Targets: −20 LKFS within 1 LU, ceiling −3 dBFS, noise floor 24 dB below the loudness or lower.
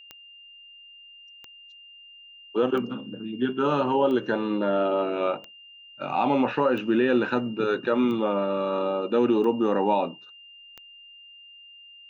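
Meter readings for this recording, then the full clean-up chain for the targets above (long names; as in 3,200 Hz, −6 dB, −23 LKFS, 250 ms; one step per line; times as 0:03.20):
number of clicks 9; interfering tone 2,800 Hz; level of the tone −46 dBFS; integrated loudness −25.0 LKFS; sample peak −11.0 dBFS; target loudness −20.0 LKFS
→ click removal
notch filter 2,800 Hz, Q 30
level +5 dB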